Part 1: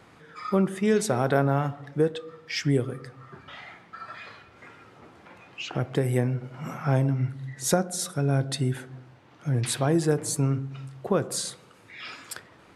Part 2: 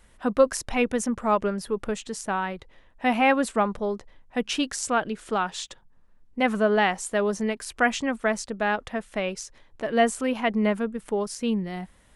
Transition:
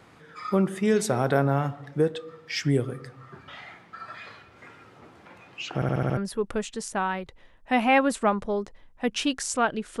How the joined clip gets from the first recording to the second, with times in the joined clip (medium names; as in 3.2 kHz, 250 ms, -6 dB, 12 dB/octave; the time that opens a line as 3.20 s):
part 1
5.75 s: stutter in place 0.07 s, 6 plays
6.17 s: go over to part 2 from 1.50 s